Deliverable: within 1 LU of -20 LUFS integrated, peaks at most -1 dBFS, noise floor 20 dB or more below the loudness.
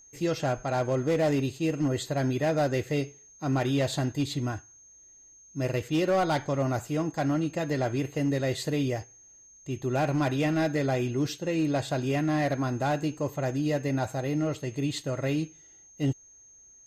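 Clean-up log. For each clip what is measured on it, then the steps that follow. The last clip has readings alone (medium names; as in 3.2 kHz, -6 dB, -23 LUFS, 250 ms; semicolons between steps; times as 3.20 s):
clipped samples 1.0%; clipping level -20.0 dBFS; steady tone 6.4 kHz; tone level -52 dBFS; loudness -28.5 LUFS; peak level -20.0 dBFS; loudness target -20.0 LUFS
-> clip repair -20 dBFS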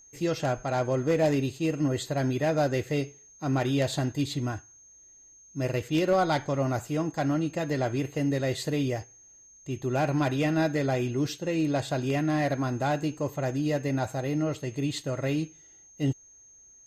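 clipped samples 0.0%; steady tone 6.4 kHz; tone level -52 dBFS
-> band-stop 6.4 kHz, Q 30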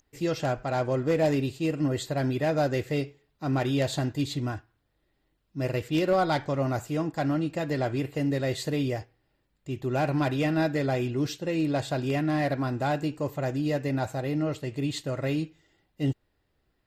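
steady tone not found; loudness -28.5 LUFS; peak level -13.0 dBFS; loudness target -20.0 LUFS
-> trim +8.5 dB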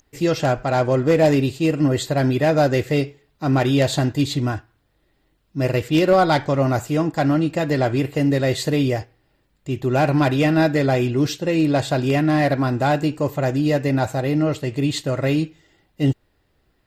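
loudness -20.0 LUFS; peak level -4.5 dBFS; noise floor -66 dBFS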